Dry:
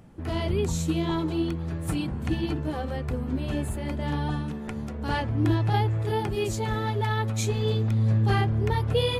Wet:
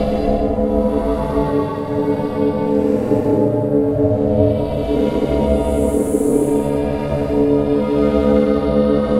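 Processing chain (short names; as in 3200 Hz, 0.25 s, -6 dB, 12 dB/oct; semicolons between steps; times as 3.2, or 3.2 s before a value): high shelf 8200 Hz +8.5 dB; Paulstretch 5.1×, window 0.25 s, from 2.49; low shelf 470 Hz +11.5 dB; ring modulator 360 Hz; gain +6 dB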